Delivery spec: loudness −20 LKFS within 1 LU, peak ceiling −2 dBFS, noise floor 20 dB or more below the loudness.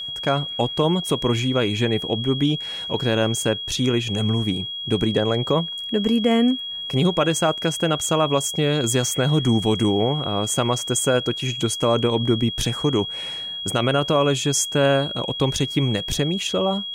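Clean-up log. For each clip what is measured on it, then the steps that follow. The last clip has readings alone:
interfering tone 3,300 Hz; level of the tone −28 dBFS; integrated loudness −21.0 LKFS; sample peak −7.5 dBFS; target loudness −20.0 LKFS
→ notch filter 3,300 Hz, Q 30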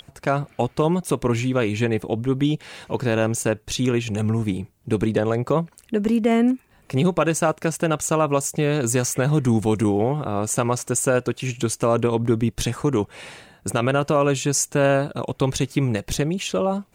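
interfering tone none found; integrated loudness −22.0 LKFS; sample peak −8.0 dBFS; target loudness −20.0 LKFS
→ level +2 dB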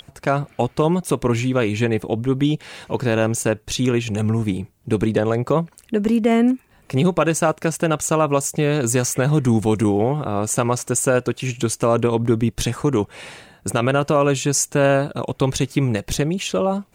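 integrated loudness −20.0 LKFS; sample peak −6.0 dBFS; background noise floor −55 dBFS

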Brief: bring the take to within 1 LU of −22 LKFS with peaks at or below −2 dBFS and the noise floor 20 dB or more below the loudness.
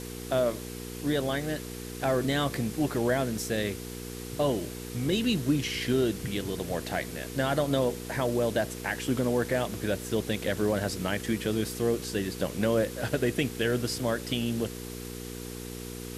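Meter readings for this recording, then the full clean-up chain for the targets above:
mains hum 60 Hz; hum harmonics up to 480 Hz; level of the hum −37 dBFS; background noise floor −40 dBFS; target noise floor −50 dBFS; integrated loudness −30.0 LKFS; sample peak −12.5 dBFS; target loudness −22.0 LKFS
→ hum removal 60 Hz, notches 8
broadband denoise 10 dB, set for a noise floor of −40 dBFS
level +8 dB

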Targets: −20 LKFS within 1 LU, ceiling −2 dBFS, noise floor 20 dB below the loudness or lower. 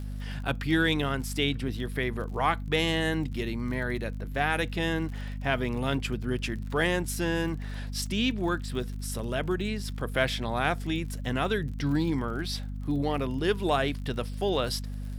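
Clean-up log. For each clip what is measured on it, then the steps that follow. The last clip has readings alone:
crackle rate 45 per second; mains hum 50 Hz; hum harmonics up to 250 Hz; level of the hum −33 dBFS; integrated loudness −29.5 LKFS; sample peak −9.5 dBFS; target loudness −20.0 LKFS
→ click removal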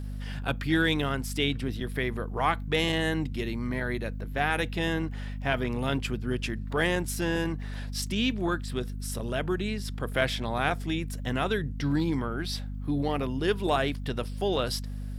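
crackle rate 0.46 per second; mains hum 50 Hz; hum harmonics up to 250 Hz; level of the hum −33 dBFS
→ hum removal 50 Hz, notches 5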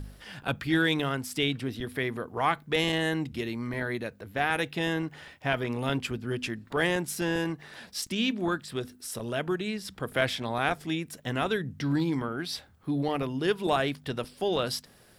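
mains hum none found; integrated loudness −30.0 LKFS; sample peak −10.0 dBFS; target loudness −20.0 LKFS
→ level +10 dB
brickwall limiter −2 dBFS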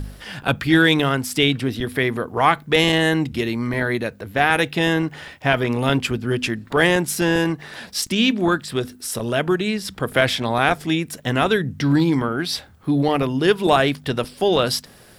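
integrated loudness −20.0 LKFS; sample peak −2.0 dBFS; background noise floor −47 dBFS

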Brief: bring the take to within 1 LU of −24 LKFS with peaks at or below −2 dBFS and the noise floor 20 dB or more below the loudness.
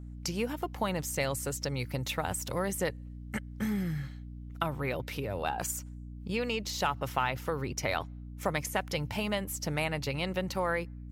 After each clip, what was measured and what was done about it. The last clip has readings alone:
mains hum 60 Hz; hum harmonics up to 300 Hz; level of the hum −41 dBFS; integrated loudness −33.5 LKFS; sample peak −16.0 dBFS; target loudness −24.0 LKFS
→ mains-hum notches 60/120/180/240/300 Hz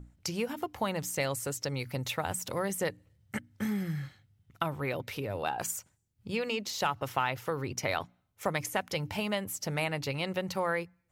mains hum none found; integrated loudness −34.0 LKFS; sample peak −16.0 dBFS; target loudness −24.0 LKFS
→ level +10 dB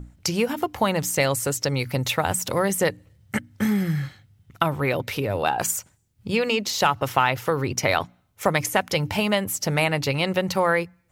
integrated loudness −24.0 LKFS; sample peak −6.0 dBFS; background noise floor −62 dBFS

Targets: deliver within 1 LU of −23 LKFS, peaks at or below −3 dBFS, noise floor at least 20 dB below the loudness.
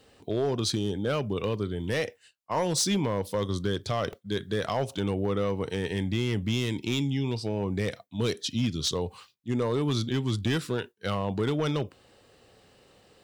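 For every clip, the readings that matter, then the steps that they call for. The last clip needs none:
share of clipped samples 1.2%; peaks flattened at −20.0 dBFS; number of dropouts 1; longest dropout 1.5 ms; integrated loudness −29.5 LKFS; sample peak −20.0 dBFS; target loudness −23.0 LKFS
→ clipped peaks rebuilt −20 dBFS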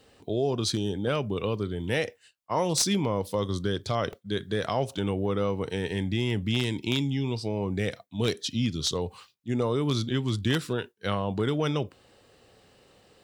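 share of clipped samples 0.0%; number of dropouts 1; longest dropout 1.5 ms
→ repair the gap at 0:04.13, 1.5 ms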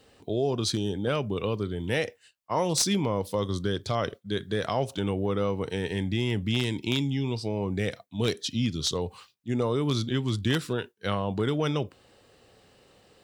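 number of dropouts 0; integrated loudness −29.0 LKFS; sample peak −11.0 dBFS; target loudness −23.0 LKFS
→ level +6 dB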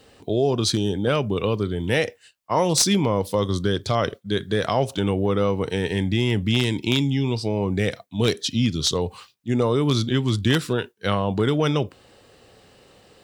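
integrated loudness −23.0 LKFS; sample peak −5.0 dBFS; background noise floor −56 dBFS

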